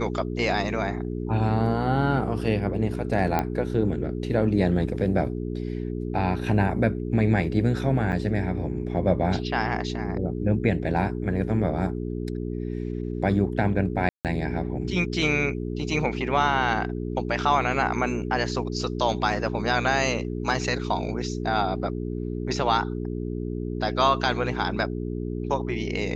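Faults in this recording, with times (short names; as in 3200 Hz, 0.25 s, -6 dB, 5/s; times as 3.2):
hum 60 Hz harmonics 7 -30 dBFS
3.39 pop -11 dBFS
8.12–8.13 gap 6.5 ms
14.09–14.25 gap 0.158 s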